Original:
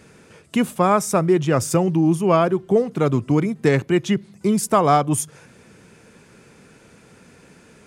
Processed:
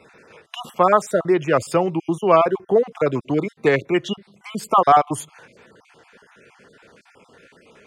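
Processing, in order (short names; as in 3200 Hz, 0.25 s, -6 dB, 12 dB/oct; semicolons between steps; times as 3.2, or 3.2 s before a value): random spectral dropouts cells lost 36%; three-band isolator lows -12 dB, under 380 Hz, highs -13 dB, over 4300 Hz; gain +4 dB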